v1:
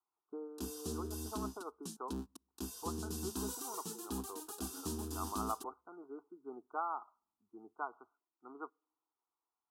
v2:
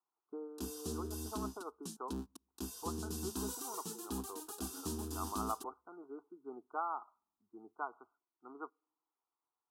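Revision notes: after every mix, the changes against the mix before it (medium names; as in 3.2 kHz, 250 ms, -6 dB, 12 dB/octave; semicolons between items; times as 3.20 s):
no change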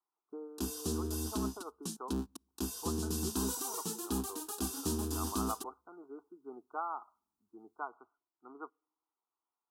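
background +6.0 dB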